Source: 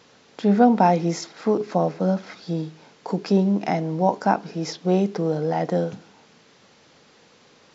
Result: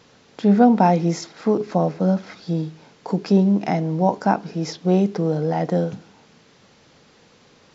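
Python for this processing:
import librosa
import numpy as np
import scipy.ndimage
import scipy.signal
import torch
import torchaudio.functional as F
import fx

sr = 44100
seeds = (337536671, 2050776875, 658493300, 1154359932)

y = fx.low_shelf(x, sr, hz=160.0, db=8.5)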